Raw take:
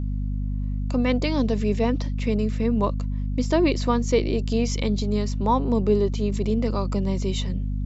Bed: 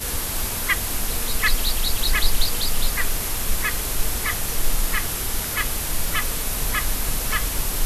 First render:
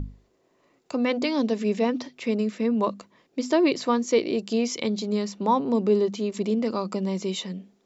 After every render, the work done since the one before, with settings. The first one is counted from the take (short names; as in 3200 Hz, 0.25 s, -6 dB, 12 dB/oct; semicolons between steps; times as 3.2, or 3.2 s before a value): notches 50/100/150/200/250 Hz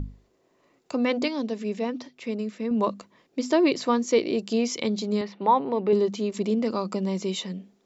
1.28–2.71 gain -5 dB; 5.21–5.93 speaker cabinet 140–3900 Hz, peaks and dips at 230 Hz -9 dB, 840 Hz +5 dB, 2000 Hz +6 dB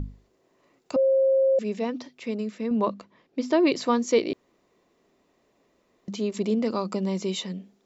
0.96–1.59 bleep 535 Hz -17 dBFS; 2.77–3.67 air absorption 110 m; 4.33–6.08 room tone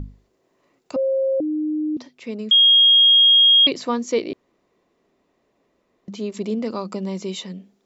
1.4–1.97 bleep 306 Hz -20 dBFS; 2.51–3.67 bleep 3260 Hz -9.5 dBFS; 4.25–6.15 high shelf 6200 Hz -> 4100 Hz -6.5 dB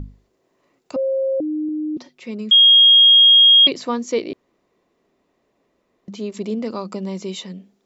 1.68–3.68 comb 5.5 ms, depth 44%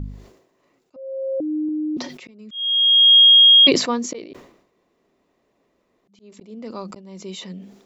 auto swell 0.658 s; sustainer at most 79 dB/s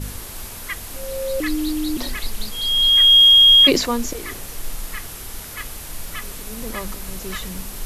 add bed -8 dB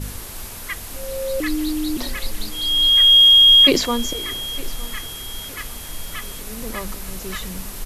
feedback echo 0.908 s, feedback 43%, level -20 dB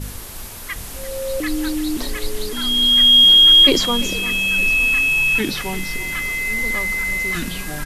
echoes that change speed 0.761 s, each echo -4 st, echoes 3, each echo -6 dB; echo 0.343 s -15.5 dB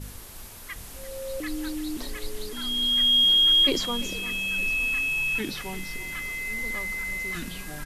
gain -9.5 dB